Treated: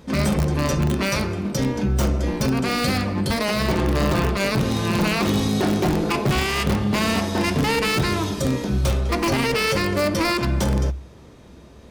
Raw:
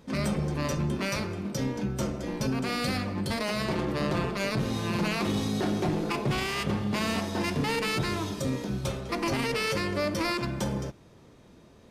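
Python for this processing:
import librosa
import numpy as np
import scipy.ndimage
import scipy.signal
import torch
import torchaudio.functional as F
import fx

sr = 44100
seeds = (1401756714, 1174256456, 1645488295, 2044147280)

p1 = fx.peak_eq(x, sr, hz=66.0, db=13.5, octaves=0.23)
p2 = (np.mod(10.0 ** (19.5 / 20.0) * p1 + 1.0, 2.0) - 1.0) / 10.0 ** (19.5 / 20.0)
p3 = p1 + (p2 * librosa.db_to_amplitude(-7.0))
y = p3 * librosa.db_to_amplitude(4.5)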